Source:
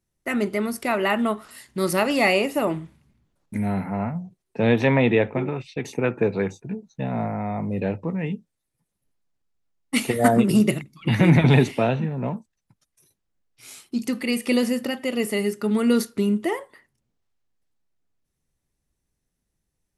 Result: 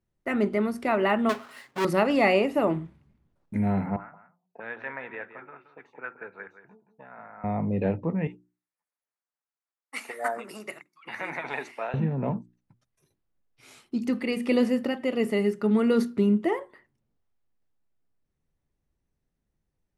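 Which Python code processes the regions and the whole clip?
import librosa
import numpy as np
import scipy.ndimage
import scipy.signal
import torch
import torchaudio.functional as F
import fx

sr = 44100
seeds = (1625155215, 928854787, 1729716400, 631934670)

y = fx.chain(x, sr, fx.halfwave_hold(),
    fx.highpass(hz=660.0, slope=6),
    fx.comb(ms=7.4, depth=0.33), at=(1.29, 1.85))
y = fx.chain(y, sr, fx.auto_wah(base_hz=610.0, top_hz=1500.0, q=4.1, full_db=-23.0, direction='up'),
    fx.echo_single(ms=173, db=-11.5), at=(3.96, 7.44))
y = fx.chain(y, sr, fx.highpass(hz=1100.0, slope=12),
    fx.peak_eq(hz=3300.0, db=-11.0, octaves=0.73), at=(8.27, 11.94))
y = fx.lowpass(y, sr, hz=1600.0, slope=6)
y = fx.hum_notches(y, sr, base_hz=60, count=6)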